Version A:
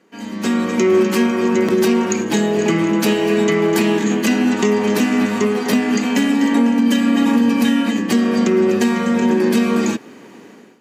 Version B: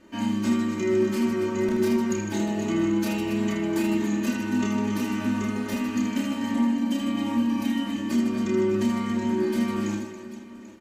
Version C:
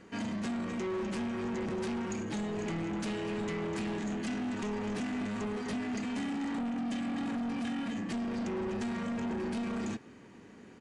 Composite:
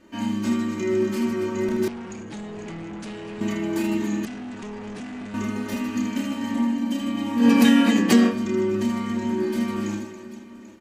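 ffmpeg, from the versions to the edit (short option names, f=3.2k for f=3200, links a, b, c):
-filter_complex "[2:a]asplit=2[a][b];[1:a]asplit=4[c][d][e][f];[c]atrim=end=1.882[g];[a]atrim=start=1.878:end=3.412[h];[d]atrim=start=3.408:end=4.252[i];[b]atrim=start=4.248:end=5.342[j];[e]atrim=start=5.338:end=7.46[k];[0:a]atrim=start=7.36:end=8.35[l];[f]atrim=start=8.25[m];[g][h]acrossfade=d=0.004:c1=hsin:c2=hsin[n];[n][i]acrossfade=d=0.004:c1=hsin:c2=hsin[o];[o][j]acrossfade=d=0.004:c1=hsin:c2=hsin[p];[p][k]acrossfade=d=0.004:c1=hsin:c2=hsin[q];[q][l]acrossfade=d=0.1:c1=tri:c2=tri[r];[r][m]acrossfade=d=0.1:c1=tri:c2=tri"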